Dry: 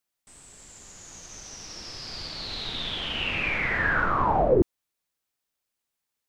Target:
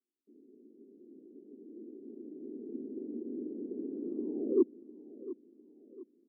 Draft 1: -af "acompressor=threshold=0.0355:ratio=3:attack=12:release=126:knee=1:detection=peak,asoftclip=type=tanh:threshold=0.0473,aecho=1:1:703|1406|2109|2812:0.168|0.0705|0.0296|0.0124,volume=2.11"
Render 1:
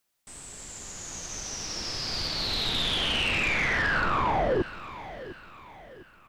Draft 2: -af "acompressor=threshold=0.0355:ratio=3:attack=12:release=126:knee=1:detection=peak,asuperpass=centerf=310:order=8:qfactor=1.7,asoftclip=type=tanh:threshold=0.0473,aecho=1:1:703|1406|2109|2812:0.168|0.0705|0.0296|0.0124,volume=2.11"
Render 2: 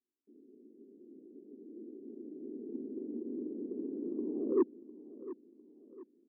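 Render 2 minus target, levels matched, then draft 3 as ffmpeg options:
saturation: distortion +14 dB
-af "acompressor=threshold=0.0355:ratio=3:attack=12:release=126:knee=1:detection=peak,asuperpass=centerf=310:order=8:qfactor=1.7,asoftclip=type=tanh:threshold=0.126,aecho=1:1:703|1406|2109|2812:0.168|0.0705|0.0296|0.0124,volume=2.11"

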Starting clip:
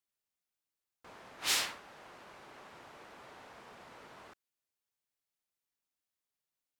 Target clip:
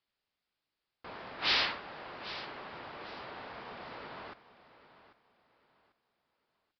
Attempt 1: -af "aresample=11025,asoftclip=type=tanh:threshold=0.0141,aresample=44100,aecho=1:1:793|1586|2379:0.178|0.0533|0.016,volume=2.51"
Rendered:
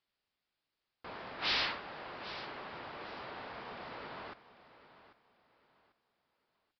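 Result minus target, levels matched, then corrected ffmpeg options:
saturation: distortion +5 dB
-af "aresample=11025,asoftclip=type=tanh:threshold=0.0282,aresample=44100,aecho=1:1:793|1586|2379:0.178|0.0533|0.016,volume=2.51"

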